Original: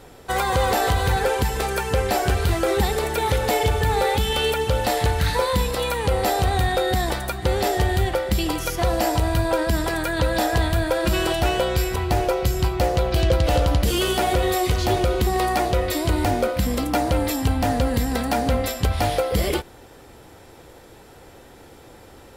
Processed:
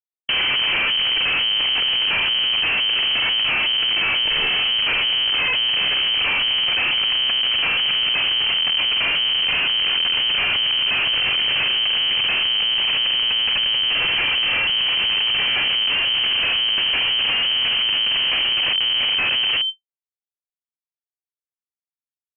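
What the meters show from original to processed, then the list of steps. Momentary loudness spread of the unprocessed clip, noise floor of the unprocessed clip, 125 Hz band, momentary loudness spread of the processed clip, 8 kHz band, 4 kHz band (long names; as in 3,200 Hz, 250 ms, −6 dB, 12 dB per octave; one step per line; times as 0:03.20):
3 LU, −46 dBFS, −21.5 dB, 0 LU, below −40 dB, +16.0 dB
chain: low-shelf EQ 150 Hz +11 dB
comparator with hysteresis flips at −22.5 dBFS
voice inversion scrambler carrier 3,100 Hz
envelope flattener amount 100%
level −6 dB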